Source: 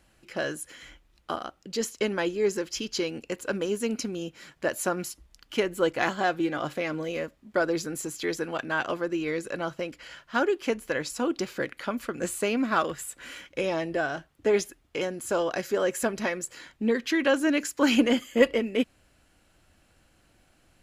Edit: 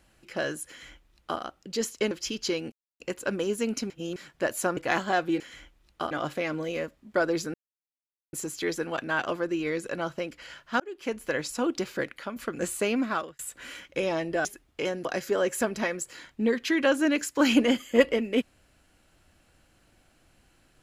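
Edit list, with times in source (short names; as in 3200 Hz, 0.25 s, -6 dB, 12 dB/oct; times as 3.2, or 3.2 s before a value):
0.69–1.4 copy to 6.51
2.11–2.61 cut
3.22 insert silence 0.28 s
4.12–4.38 reverse
4.99–5.88 cut
7.94 insert silence 0.79 s
10.41–10.87 fade in
11.63–11.97 fade out, to -7.5 dB
12.59–13 fade out
14.06–14.61 cut
15.21–15.47 cut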